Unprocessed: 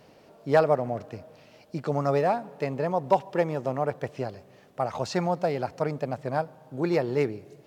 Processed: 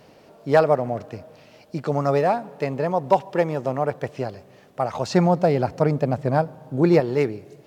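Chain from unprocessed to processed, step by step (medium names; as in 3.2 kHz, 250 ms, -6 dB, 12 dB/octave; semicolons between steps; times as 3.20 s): 5.10–7.00 s: bass shelf 440 Hz +8 dB; trim +4 dB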